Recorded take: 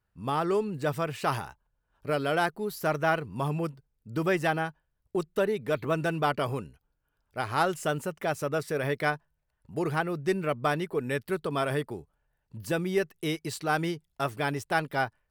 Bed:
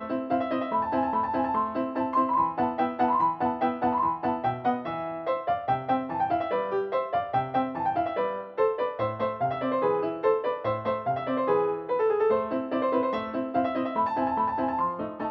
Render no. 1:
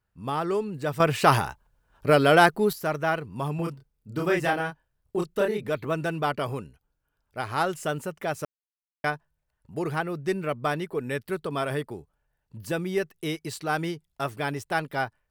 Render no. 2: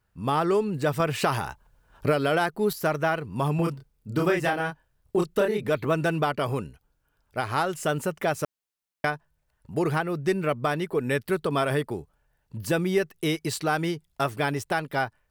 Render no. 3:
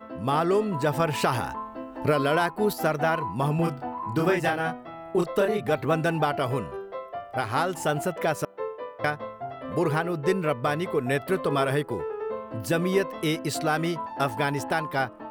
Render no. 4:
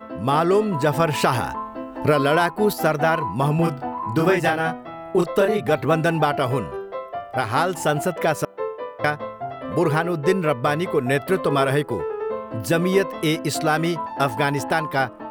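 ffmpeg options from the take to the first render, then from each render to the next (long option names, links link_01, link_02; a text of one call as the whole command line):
ffmpeg -i in.wav -filter_complex "[0:a]asettb=1/sr,asplit=3[link_01][link_02][link_03];[link_01]atrim=end=3.564[link_04];[link_02]atrim=start=3.56:end=5.69,asetpts=PTS-STARTPTS,afade=type=in:duration=0.004:curve=qsin,afade=type=out:start_time=2.126:duration=0.004:curve=qsin,asplit=2[link_05][link_06];[link_06]adelay=29,volume=-2dB[link_07];[link_05][link_07]amix=inputs=2:normalize=0,atrim=end_sample=93933[link_08];[link_03]atrim=start=5.686[link_09];[link_04][link_08]acrossfade=duration=0.004:curve1=hsin:curve2=qsin[link_10];[link_10][link_09]acrossfade=duration=0.004:curve1=qsin:curve2=hsin,asplit=5[link_11][link_12][link_13][link_14][link_15];[link_11]atrim=end=1.002[link_16];[link_12]atrim=start=0.998:end=2.732,asetpts=PTS-STARTPTS,volume=9.5dB[link_17];[link_13]atrim=start=2.728:end=8.45,asetpts=PTS-STARTPTS,afade=type=out:start_time=5.718:duration=0.004:curve=hsin[link_18];[link_14]atrim=start=8.45:end=9.04,asetpts=PTS-STARTPTS,volume=0[link_19];[link_15]atrim=start=9.04,asetpts=PTS-STARTPTS,afade=type=in:duration=0.004:curve=hsin[link_20];[link_16][link_17]acrossfade=duration=0.004:curve1=hsin:curve2=hsin[link_21];[link_18][link_19][link_20]concat=n=3:v=0:a=1[link_22];[link_21][link_22]acrossfade=duration=0.004:curve1=hsin:curve2=hsin" out.wav
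ffmpeg -i in.wav -filter_complex "[0:a]asplit=2[link_01][link_02];[link_02]acompressor=threshold=-29dB:ratio=6,volume=0dB[link_03];[link_01][link_03]amix=inputs=2:normalize=0,alimiter=limit=-13dB:level=0:latency=1:release=402" out.wav
ffmpeg -i in.wav -i bed.wav -filter_complex "[1:a]volume=-8.5dB[link_01];[0:a][link_01]amix=inputs=2:normalize=0" out.wav
ffmpeg -i in.wav -af "volume=5dB" out.wav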